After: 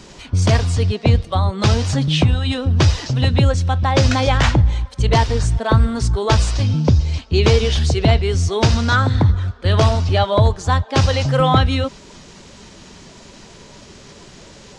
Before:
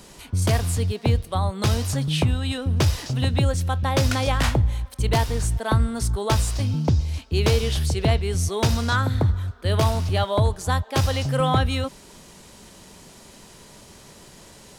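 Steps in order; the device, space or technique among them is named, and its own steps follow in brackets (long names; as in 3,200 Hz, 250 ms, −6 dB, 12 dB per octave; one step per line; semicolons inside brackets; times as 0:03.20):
clip after many re-uploads (low-pass filter 6,800 Hz 24 dB per octave; spectral magnitudes quantised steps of 15 dB)
level +6.5 dB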